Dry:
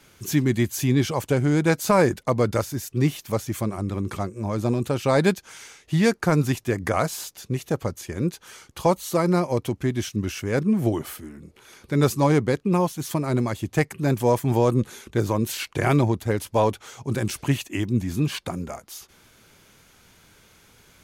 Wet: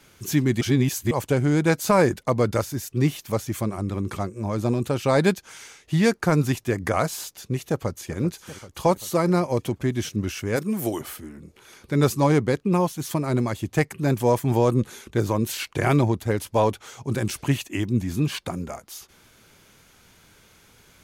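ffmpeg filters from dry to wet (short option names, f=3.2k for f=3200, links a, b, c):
-filter_complex "[0:a]asplit=2[a][b];[b]afade=t=in:st=7.68:d=0.01,afade=t=out:st=8.19:d=0.01,aecho=0:1:390|780|1170|1560|1950|2340|2730|3120|3510:0.199526|0.139668|0.0977679|0.0684375|0.0479062|0.0335344|0.0234741|0.0164318|0.0115023[c];[a][c]amix=inputs=2:normalize=0,asplit=3[d][e][f];[d]afade=t=out:st=10.55:d=0.02[g];[e]aemphasis=mode=production:type=bsi,afade=t=in:st=10.55:d=0.02,afade=t=out:st=11:d=0.02[h];[f]afade=t=in:st=11:d=0.02[i];[g][h][i]amix=inputs=3:normalize=0,asplit=3[j][k][l];[j]atrim=end=0.612[m];[k]atrim=start=0.608:end=1.112,asetpts=PTS-STARTPTS,areverse[n];[l]atrim=start=1.108[o];[m][n]acrossfade=d=0.004:c1=hsin:c2=hsin[p];[p][o]acrossfade=d=0.004:c1=hsin:c2=hsin"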